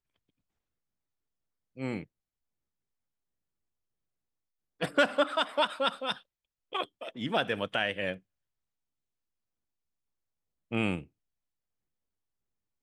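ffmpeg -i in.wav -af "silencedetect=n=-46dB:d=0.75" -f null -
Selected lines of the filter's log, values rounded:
silence_start: 0.00
silence_end: 1.77 | silence_duration: 1.77
silence_start: 2.04
silence_end: 4.80 | silence_duration: 2.77
silence_start: 8.18
silence_end: 10.71 | silence_duration: 2.54
silence_start: 11.03
silence_end: 12.82 | silence_duration: 1.79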